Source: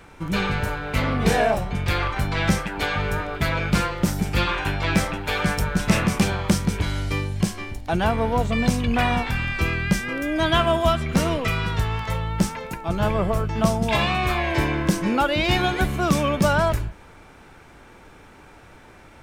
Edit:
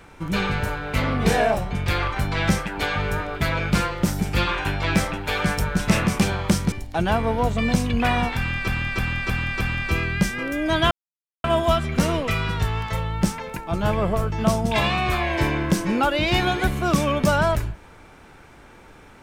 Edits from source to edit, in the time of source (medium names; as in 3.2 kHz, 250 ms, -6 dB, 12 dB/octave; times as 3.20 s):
6.72–7.66 s: delete
9.31–9.62 s: loop, 5 plays
10.61 s: insert silence 0.53 s